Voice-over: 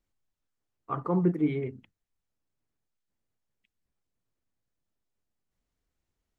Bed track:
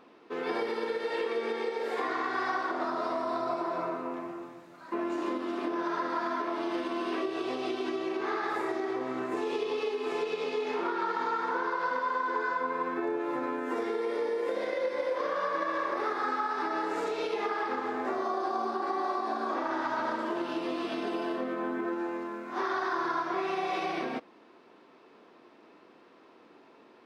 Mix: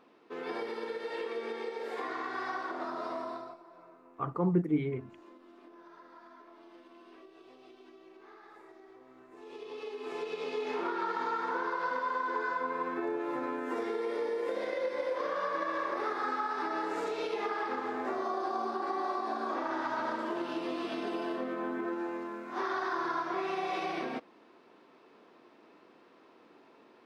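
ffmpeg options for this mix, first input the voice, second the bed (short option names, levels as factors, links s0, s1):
-filter_complex "[0:a]adelay=3300,volume=0.75[s0];[1:a]volume=5.31,afade=t=out:st=3.21:d=0.37:silence=0.141254,afade=t=in:st=9.32:d=1.39:silence=0.1[s1];[s0][s1]amix=inputs=2:normalize=0"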